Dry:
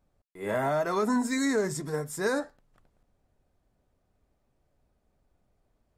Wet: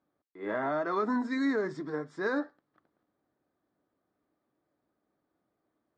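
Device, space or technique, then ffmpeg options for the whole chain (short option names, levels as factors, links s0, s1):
kitchen radio: -af "highpass=190,equalizer=f=310:t=q:w=4:g=10,equalizer=f=1200:t=q:w=4:g=6,equalizer=f=1700:t=q:w=4:g=4,equalizer=f=2700:t=q:w=4:g=-7,lowpass=f=4300:w=0.5412,lowpass=f=4300:w=1.3066,volume=0.562"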